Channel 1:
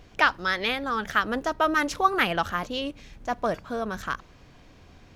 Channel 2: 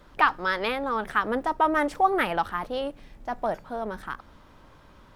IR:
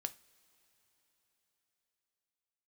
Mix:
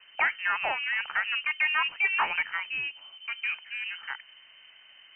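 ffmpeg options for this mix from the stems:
-filter_complex "[0:a]afwtdn=0.0355,lowpass=frequency=2200:width_type=q:width=15,volume=-15dB[link_01];[1:a]volume=-1,volume=-2dB[link_02];[link_01][link_02]amix=inputs=2:normalize=0,asoftclip=type=tanh:threshold=-19dB,lowpass=frequency=2600:width_type=q:width=0.5098,lowpass=frequency=2600:width_type=q:width=0.6013,lowpass=frequency=2600:width_type=q:width=0.9,lowpass=frequency=2600:width_type=q:width=2.563,afreqshift=-3100"

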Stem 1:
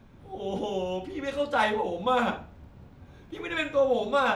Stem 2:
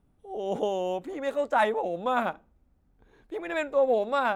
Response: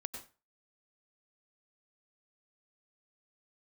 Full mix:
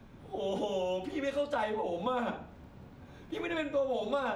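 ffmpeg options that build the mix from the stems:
-filter_complex "[0:a]volume=1dB[link_01];[1:a]volume=-5.5dB[link_02];[link_01][link_02]amix=inputs=2:normalize=0,acrossover=split=130|760[link_03][link_04][link_05];[link_03]acompressor=threshold=-56dB:ratio=4[link_06];[link_04]acompressor=threshold=-33dB:ratio=4[link_07];[link_05]acompressor=threshold=-39dB:ratio=4[link_08];[link_06][link_07][link_08]amix=inputs=3:normalize=0"

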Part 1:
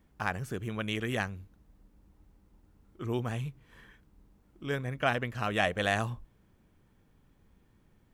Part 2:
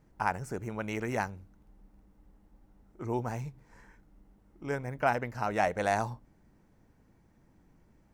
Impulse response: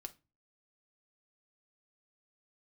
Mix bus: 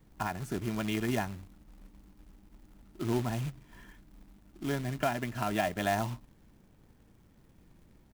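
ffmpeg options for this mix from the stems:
-filter_complex "[0:a]highpass=300,volume=-1.5dB[link_01];[1:a]alimiter=limit=-17.5dB:level=0:latency=1:release=328,adelay=3,volume=-5dB,asplit=2[link_02][link_03];[link_03]apad=whole_len=358630[link_04];[link_01][link_04]sidechaincompress=threshold=-37dB:ratio=8:attack=12:release=299[link_05];[link_05][link_02]amix=inputs=2:normalize=0,lowshelf=frequency=340:gain=9,acrusher=bits=3:mode=log:mix=0:aa=0.000001"

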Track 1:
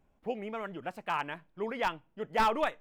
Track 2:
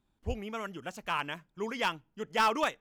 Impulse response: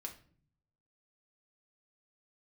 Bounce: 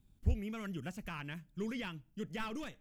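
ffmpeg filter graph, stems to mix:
-filter_complex "[0:a]alimiter=level_in=1.5dB:limit=-24dB:level=0:latency=1,volume=-1.5dB,volume=-8.5dB,asplit=2[link_01][link_02];[link_02]volume=-10.5dB[link_03];[1:a]alimiter=level_in=3.5dB:limit=-24dB:level=0:latency=1:release=490,volume=-3.5dB,asoftclip=type=tanh:threshold=-29dB,bass=frequency=250:gain=11,treble=frequency=4000:gain=-2,volume=-1,volume=1.5dB[link_04];[2:a]atrim=start_sample=2205[link_05];[link_03][link_05]afir=irnorm=-1:irlink=0[link_06];[link_01][link_04][link_06]amix=inputs=3:normalize=0,highshelf=frequency=7000:gain=9.5,acrossover=split=2900[link_07][link_08];[link_08]acompressor=threshold=-53dB:ratio=4:attack=1:release=60[link_09];[link_07][link_09]amix=inputs=2:normalize=0,equalizer=frequency=860:width=0.52:gain=-11"

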